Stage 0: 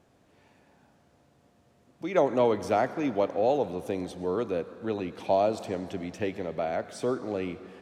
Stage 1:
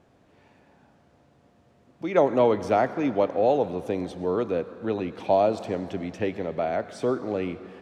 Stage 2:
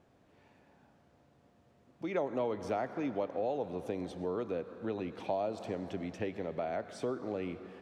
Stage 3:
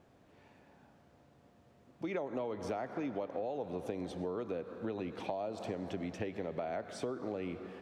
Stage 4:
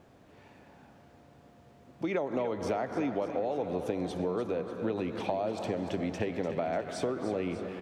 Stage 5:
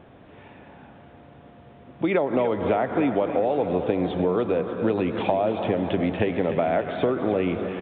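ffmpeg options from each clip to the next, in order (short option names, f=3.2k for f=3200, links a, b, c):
-af "lowpass=f=3.8k:p=1,volume=3.5dB"
-af "acompressor=threshold=-27dB:ratio=2.5,volume=-6dB"
-af "acompressor=threshold=-36dB:ratio=5,volume=2dB"
-af "aecho=1:1:296|592|888|1184|1480|1776|2072:0.282|0.163|0.0948|0.055|0.0319|0.0185|0.0107,volume=6dB"
-af "aresample=8000,aresample=44100,volume=9dB"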